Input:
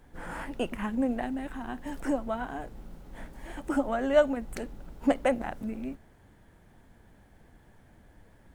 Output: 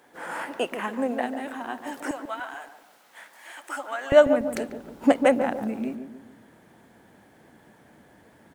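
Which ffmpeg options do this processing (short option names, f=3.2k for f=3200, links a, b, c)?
-filter_complex "[0:a]asetnsamples=n=441:p=0,asendcmd='2.11 highpass f 1200;4.12 highpass f 190',highpass=400,asplit=2[a][b];[b]adelay=144,lowpass=f=850:p=1,volume=-7dB,asplit=2[c][d];[d]adelay=144,lowpass=f=850:p=1,volume=0.47,asplit=2[e][f];[f]adelay=144,lowpass=f=850:p=1,volume=0.47,asplit=2[g][h];[h]adelay=144,lowpass=f=850:p=1,volume=0.47,asplit=2[i][j];[j]adelay=144,lowpass=f=850:p=1,volume=0.47,asplit=2[k][l];[l]adelay=144,lowpass=f=850:p=1,volume=0.47[m];[a][c][e][g][i][k][m]amix=inputs=7:normalize=0,volume=6.5dB"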